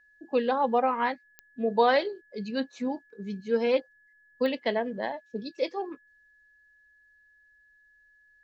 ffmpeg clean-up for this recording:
-af "adeclick=t=4,bandreject=f=1700:w=30"

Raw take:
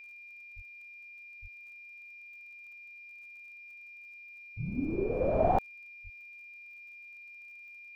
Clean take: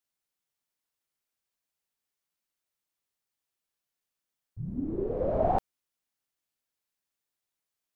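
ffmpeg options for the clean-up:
-filter_complex "[0:a]adeclick=t=4,bandreject=f=2400:w=30,asplit=3[s0][s1][s2];[s0]afade=t=out:st=0.55:d=0.02[s3];[s1]highpass=f=140:w=0.5412,highpass=f=140:w=1.3066,afade=t=in:st=0.55:d=0.02,afade=t=out:st=0.67:d=0.02[s4];[s2]afade=t=in:st=0.67:d=0.02[s5];[s3][s4][s5]amix=inputs=3:normalize=0,asplit=3[s6][s7][s8];[s6]afade=t=out:st=1.41:d=0.02[s9];[s7]highpass=f=140:w=0.5412,highpass=f=140:w=1.3066,afade=t=in:st=1.41:d=0.02,afade=t=out:st=1.53:d=0.02[s10];[s8]afade=t=in:st=1.53:d=0.02[s11];[s9][s10][s11]amix=inputs=3:normalize=0,asplit=3[s12][s13][s14];[s12]afade=t=out:st=6.03:d=0.02[s15];[s13]highpass=f=140:w=0.5412,highpass=f=140:w=1.3066,afade=t=in:st=6.03:d=0.02,afade=t=out:st=6.15:d=0.02[s16];[s14]afade=t=in:st=6.15:d=0.02[s17];[s15][s16][s17]amix=inputs=3:normalize=0,afftdn=nr=30:nf=-50"

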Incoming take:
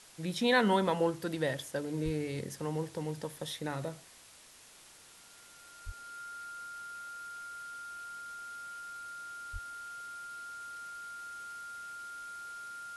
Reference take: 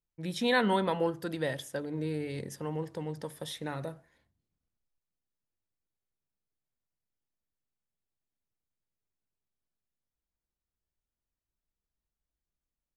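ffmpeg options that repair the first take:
-filter_complex "[0:a]bandreject=f=1400:w=30,asplit=3[s0][s1][s2];[s0]afade=t=out:st=2.04:d=0.02[s3];[s1]highpass=f=140:w=0.5412,highpass=f=140:w=1.3066,afade=t=in:st=2.04:d=0.02,afade=t=out:st=2.16:d=0.02[s4];[s2]afade=t=in:st=2.16:d=0.02[s5];[s3][s4][s5]amix=inputs=3:normalize=0,asplit=3[s6][s7][s8];[s6]afade=t=out:st=5.85:d=0.02[s9];[s7]highpass=f=140:w=0.5412,highpass=f=140:w=1.3066,afade=t=in:st=5.85:d=0.02,afade=t=out:st=5.97:d=0.02[s10];[s8]afade=t=in:st=5.97:d=0.02[s11];[s9][s10][s11]amix=inputs=3:normalize=0,asplit=3[s12][s13][s14];[s12]afade=t=out:st=9.52:d=0.02[s15];[s13]highpass=f=140:w=0.5412,highpass=f=140:w=1.3066,afade=t=in:st=9.52:d=0.02,afade=t=out:st=9.64:d=0.02[s16];[s14]afade=t=in:st=9.64:d=0.02[s17];[s15][s16][s17]amix=inputs=3:normalize=0,afwtdn=0.002"

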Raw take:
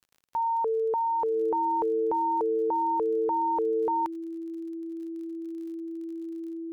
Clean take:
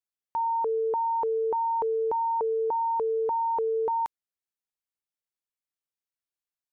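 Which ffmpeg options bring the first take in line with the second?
-af "adeclick=t=4,bandreject=f=330:w=30"

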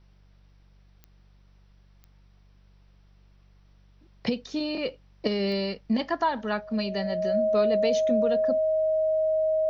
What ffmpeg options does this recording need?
-af "adeclick=t=4,bandreject=f=48.2:t=h:w=4,bandreject=f=96.4:t=h:w=4,bandreject=f=144.6:t=h:w=4,bandreject=f=192.8:t=h:w=4,bandreject=f=630:w=30,agate=range=0.0891:threshold=0.00355"

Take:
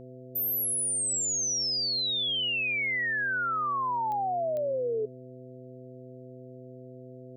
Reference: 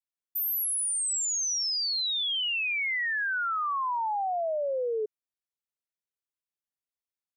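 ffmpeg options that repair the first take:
-af "adeclick=t=4,bandreject=f=127:t=h:w=4,bandreject=f=254:t=h:w=4,bandreject=f=381:t=h:w=4,bandreject=f=508:t=h:w=4,bandreject=f=660:w=30"

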